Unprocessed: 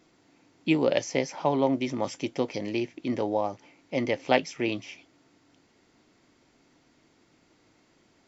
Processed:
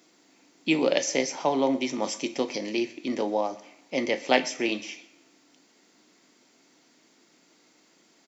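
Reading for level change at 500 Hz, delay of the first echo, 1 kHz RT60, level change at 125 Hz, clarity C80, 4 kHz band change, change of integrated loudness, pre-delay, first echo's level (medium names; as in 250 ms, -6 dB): +0.5 dB, 127 ms, 0.95 s, -8.0 dB, 17.0 dB, +5.0 dB, +1.0 dB, 22 ms, -22.0 dB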